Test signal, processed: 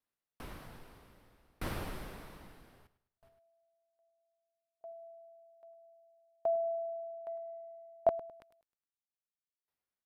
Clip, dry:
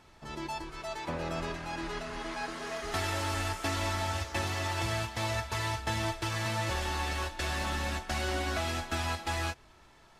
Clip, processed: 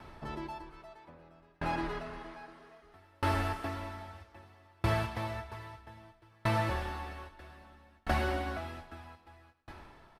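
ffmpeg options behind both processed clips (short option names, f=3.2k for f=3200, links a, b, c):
-filter_complex "[0:a]asplit=2[a][b];[b]acompressor=threshold=-41dB:ratio=6,volume=-0.5dB[c];[a][c]amix=inputs=2:normalize=0,aecho=1:1:104|208|312|416|520:0.211|0.0993|0.0467|0.0219|0.0103,acrossover=split=1900[d][e];[d]acontrast=79[f];[e]asoftclip=type=hard:threshold=-36.5dB[g];[f][g]amix=inputs=2:normalize=0,equalizer=f=6.9k:t=o:w=0.53:g=-9.5,aresample=32000,aresample=44100,aeval=exprs='val(0)*pow(10,-37*if(lt(mod(0.62*n/s,1),2*abs(0.62)/1000),1-mod(0.62*n/s,1)/(2*abs(0.62)/1000),(mod(0.62*n/s,1)-2*abs(0.62)/1000)/(1-2*abs(0.62)/1000))/20)':c=same,volume=-2.5dB"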